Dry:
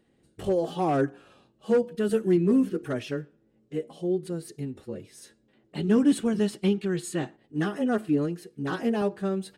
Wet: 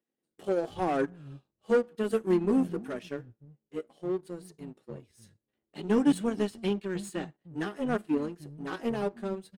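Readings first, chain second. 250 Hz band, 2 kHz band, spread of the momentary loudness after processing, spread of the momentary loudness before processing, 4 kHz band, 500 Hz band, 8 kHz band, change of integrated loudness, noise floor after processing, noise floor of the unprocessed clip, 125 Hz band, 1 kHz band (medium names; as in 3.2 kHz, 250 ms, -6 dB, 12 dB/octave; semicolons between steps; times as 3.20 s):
-4.5 dB, -2.5 dB, 19 LU, 14 LU, -4.0 dB, -3.0 dB, -6.5 dB, -3.5 dB, under -85 dBFS, -67 dBFS, -7.5 dB, -2.5 dB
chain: bands offset in time highs, lows 310 ms, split 170 Hz; power-law waveshaper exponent 1.4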